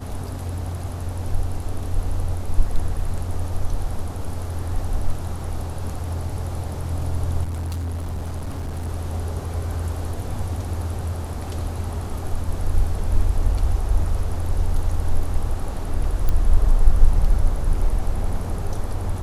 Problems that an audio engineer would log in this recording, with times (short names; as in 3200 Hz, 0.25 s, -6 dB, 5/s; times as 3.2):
7.43–8.89 clipped -24 dBFS
16.29 pop -10 dBFS